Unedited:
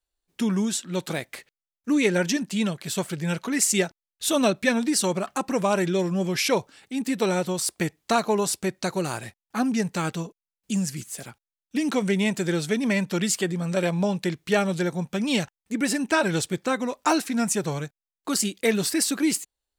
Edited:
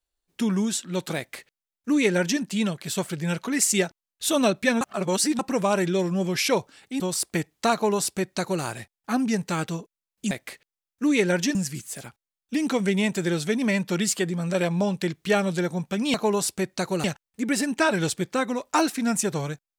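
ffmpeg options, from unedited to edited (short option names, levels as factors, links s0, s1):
-filter_complex "[0:a]asplit=8[s0][s1][s2][s3][s4][s5][s6][s7];[s0]atrim=end=4.812[s8];[s1]atrim=start=4.808:end=5.392,asetpts=PTS-STARTPTS,areverse[s9];[s2]atrim=start=5.388:end=7.002[s10];[s3]atrim=start=7.458:end=10.772[s11];[s4]atrim=start=1.168:end=2.412[s12];[s5]atrim=start=10.768:end=15.362[s13];[s6]atrim=start=8.188:end=9.092[s14];[s7]atrim=start=15.358[s15];[s8][s9]acrossfade=d=0.004:c1=hsin:c2=hsin[s16];[s16][s10]acrossfade=d=0.004:c1=hsin:c2=hsin[s17];[s17][s11]acrossfade=d=0.004:c1=hsin:c2=hsin[s18];[s18][s12]acrossfade=d=0.004:c1=hsin:c2=hsin[s19];[s19][s13]acrossfade=d=0.004:c1=hsin:c2=hsin[s20];[s20][s14]acrossfade=d=0.004:c1=hsin:c2=hsin[s21];[s21][s15]acrossfade=d=0.004:c1=hsin:c2=hsin"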